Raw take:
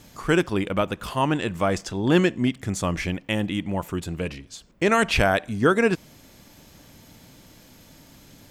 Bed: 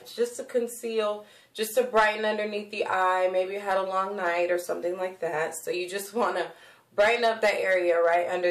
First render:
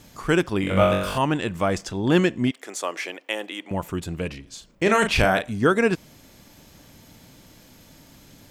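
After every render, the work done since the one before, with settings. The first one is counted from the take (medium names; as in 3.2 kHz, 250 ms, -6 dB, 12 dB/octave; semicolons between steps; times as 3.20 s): 0.61–1.18 s: flutter echo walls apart 3.6 m, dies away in 0.77 s; 2.51–3.71 s: high-pass 380 Hz 24 dB/octave; 4.43–5.51 s: doubling 37 ms -6.5 dB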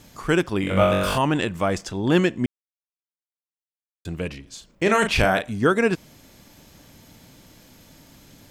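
0.88–1.45 s: level flattener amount 50%; 2.46–4.05 s: mute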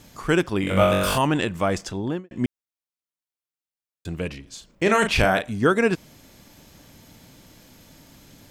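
0.67–1.27 s: treble shelf 6.1 kHz +7 dB; 1.88–2.31 s: studio fade out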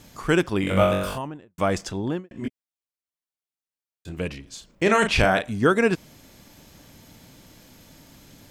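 0.66–1.58 s: studio fade out; 2.32–4.17 s: detune thickener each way 26 cents; 4.88–5.42 s: low-pass 10 kHz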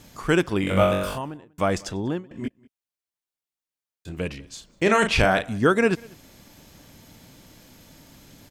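echo from a far wall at 33 m, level -25 dB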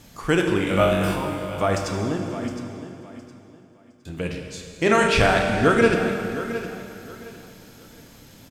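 feedback delay 713 ms, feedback 26%, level -13 dB; plate-style reverb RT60 2.5 s, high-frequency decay 0.9×, pre-delay 0 ms, DRR 2.5 dB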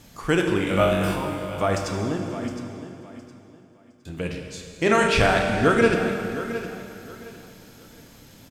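trim -1 dB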